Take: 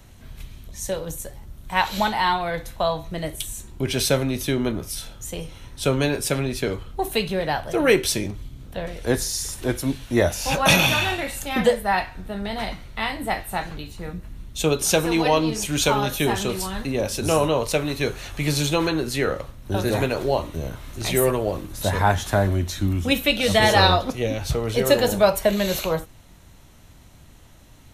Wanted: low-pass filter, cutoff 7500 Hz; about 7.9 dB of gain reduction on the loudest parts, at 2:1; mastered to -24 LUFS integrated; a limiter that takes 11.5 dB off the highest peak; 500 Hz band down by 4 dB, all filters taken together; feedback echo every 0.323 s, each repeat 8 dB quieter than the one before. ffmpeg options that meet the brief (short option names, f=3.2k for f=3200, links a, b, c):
-af "lowpass=7.5k,equalizer=f=500:t=o:g=-5,acompressor=threshold=-28dB:ratio=2,alimiter=limit=-22.5dB:level=0:latency=1,aecho=1:1:323|646|969|1292|1615:0.398|0.159|0.0637|0.0255|0.0102,volume=8.5dB"